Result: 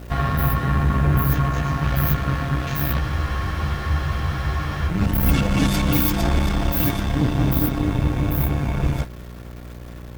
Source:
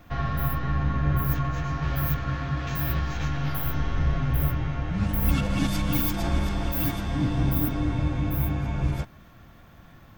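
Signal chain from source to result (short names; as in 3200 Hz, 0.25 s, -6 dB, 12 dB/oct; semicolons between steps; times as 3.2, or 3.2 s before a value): buzz 60 Hz, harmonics 10, -42 dBFS -6 dB/oct; added harmonics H 5 -31 dB, 6 -18 dB, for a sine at -10.5 dBFS; in parallel at -4 dB: bit-crush 7-bit; on the sum: spectral freeze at 3.03, 1.86 s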